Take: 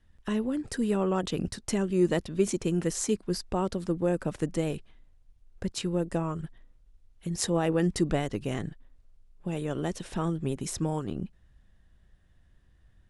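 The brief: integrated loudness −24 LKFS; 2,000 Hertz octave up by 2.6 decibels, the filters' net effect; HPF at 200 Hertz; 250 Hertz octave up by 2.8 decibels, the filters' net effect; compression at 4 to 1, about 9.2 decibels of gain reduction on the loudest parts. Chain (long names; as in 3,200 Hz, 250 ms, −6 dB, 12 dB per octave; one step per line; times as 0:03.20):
high-pass filter 200 Hz
parametric band 250 Hz +7 dB
parametric band 2,000 Hz +3 dB
downward compressor 4 to 1, threshold −28 dBFS
level +9.5 dB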